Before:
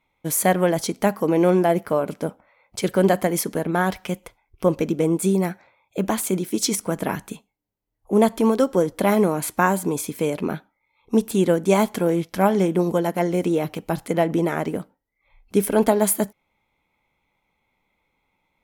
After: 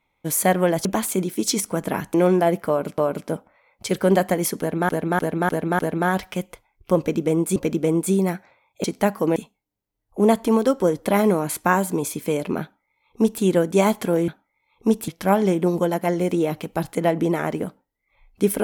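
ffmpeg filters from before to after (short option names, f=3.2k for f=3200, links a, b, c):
-filter_complex "[0:a]asplit=13[a][b][c][d][e][f][g][h][i][j][k][l][m];[a]atrim=end=0.852[n];[b]atrim=start=5.998:end=7.292[o];[c]atrim=start=1.368:end=2.212[p];[d]atrim=start=1.908:end=3.822[q];[e]atrim=start=3.518:end=3.822[r];[f]atrim=start=3.518:end=3.822[s];[g]atrim=start=3.518:end=3.822[t];[h]atrim=start=3.518:end=5.292[u];[i]atrim=start=4.718:end=6.002[v];[j]atrim=start=0.848:end=1.372[w];[k]atrim=start=7.288:end=12.212[x];[l]atrim=start=10.548:end=11.352[y];[m]atrim=start=12.208[z];[n][o]acrossfade=d=0.004:c1=hsin:c2=hsin[aa];[aa][p]acrossfade=d=0.004:c1=hsin:c2=hsin[ab];[ab][q]acrossfade=d=0.004:c1=hsin:c2=hsin[ac];[ac][r]acrossfade=d=0.004:c1=hsin:c2=hsin[ad];[ad][s]acrossfade=d=0.004:c1=hsin:c2=hsin[ae];[ae][t]acrossfade=d=0.004:c1=hsin:c2=hsin[af];[af][u]acrossfade=d=0.004:c1=hsin:c2=hsin[ag];[ag][v]acrossfade=d=0.004:c1=hsin:c2=hsin[ah];[ah][w]acrossfade=d=0.004:c1=hsin:c2=hsin[ai];[ai][x]acrossfade=d=0.004:c1=hsin:c2=hsin[aj];[aj][y]acrossfade=d=0.004:c1=hsin:c2=hsin[ak];[ak][z]acrossfade=d=0.004:c1=hsin:c2=hsin"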